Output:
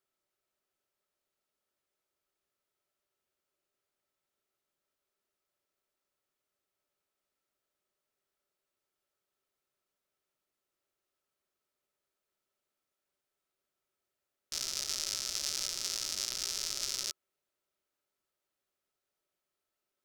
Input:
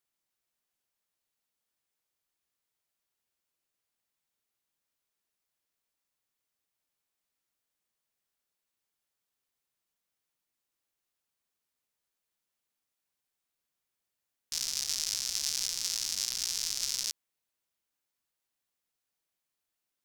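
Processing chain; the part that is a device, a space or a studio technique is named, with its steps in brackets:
inside a helmet (high-shelf EQ 4,500 Hz −5 dB; hollow resonant body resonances 390/580/1,300 Hz, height 11 dB, ringing for 45 ms)

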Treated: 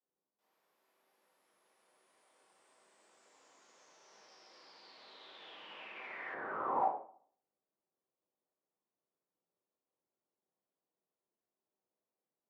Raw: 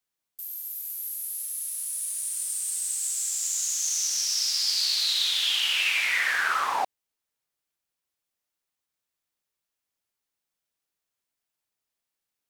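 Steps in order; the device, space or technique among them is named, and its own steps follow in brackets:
television next door (downward compressor, threshold −28 dBFS, peak gain reduction 7 dB; low-pass filter 460 Hz 12 dB per octave; convolution reverb RT60 0.50 s, pre-delay 17 ms, DRR −5.5 dB)
Bessel high-pass filter 390 Hz, order 2
0:06.34–0:06.81: spectral tilt −3.5 dB per octave
level +4 dB

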